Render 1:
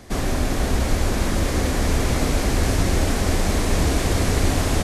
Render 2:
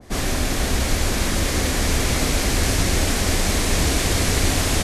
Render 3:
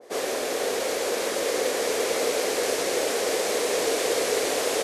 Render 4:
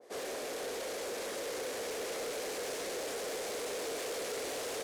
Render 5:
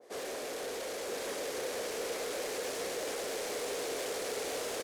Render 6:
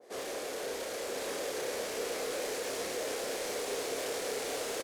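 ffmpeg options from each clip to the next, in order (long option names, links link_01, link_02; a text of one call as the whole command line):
ffmpeg -i in.wav -af "adynamicequalizer=threshold=0.00708:dfrequency=1600:dqfactor=0.7:tfrequency=1600:tqfactor=0.7:attack=5:release=100:ratio=0.375:range=3.5:mode=boostabove:tftype=highshelf,volume=-1dB" out.wav
ffmpeg -i in.wav -af "highpass=frequency=470:width_type=q:width=4.9,volume=-5.5dB" out.wav
ffmpeg -i in.wav -af "asoftclip=type=tanh:threshold=-26dB,volume=-8.5dB" out.wav
ffmpeg -i in.wav -af "aecho=1:1:980:0.596" out.wav
ffmpeg -i in.wav -filter_complex "[0:a]asplit=2[link_01][link_02];[link_02]adelay=30,volume=-6dB[link_03];[link_01][link_03]amix=inputs=2:normalize=0" out.wav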